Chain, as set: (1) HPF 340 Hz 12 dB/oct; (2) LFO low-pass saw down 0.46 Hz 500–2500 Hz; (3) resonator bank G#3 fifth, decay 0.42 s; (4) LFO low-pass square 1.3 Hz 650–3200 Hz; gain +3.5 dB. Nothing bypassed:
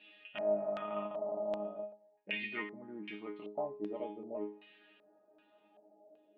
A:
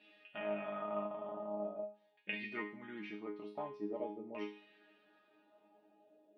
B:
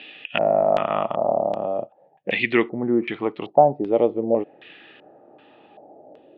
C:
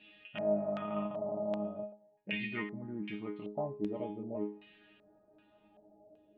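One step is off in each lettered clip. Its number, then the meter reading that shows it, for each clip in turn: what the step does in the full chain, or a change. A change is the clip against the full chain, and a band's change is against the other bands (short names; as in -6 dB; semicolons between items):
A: 4, 4 kHz band -4.0 dB; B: 3, 1 kHz band +5.5 dB; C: 1, 125 Hz band +11.0 dB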